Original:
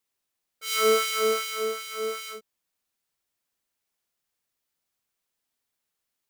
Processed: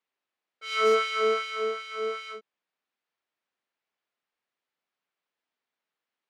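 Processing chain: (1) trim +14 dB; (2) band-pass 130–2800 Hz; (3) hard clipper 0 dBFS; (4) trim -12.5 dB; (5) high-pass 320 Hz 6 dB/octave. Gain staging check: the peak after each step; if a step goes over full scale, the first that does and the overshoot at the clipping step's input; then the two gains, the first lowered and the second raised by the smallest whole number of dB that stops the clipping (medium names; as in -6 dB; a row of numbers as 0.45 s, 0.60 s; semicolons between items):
+5.0 dBFS, +3.0 dBFS, 0.0 dBFS, -12.5 dBFS, -14.0 dBFS; step 1, 3.0 dB; step 1 +11 dB, step 4 -9.5 dB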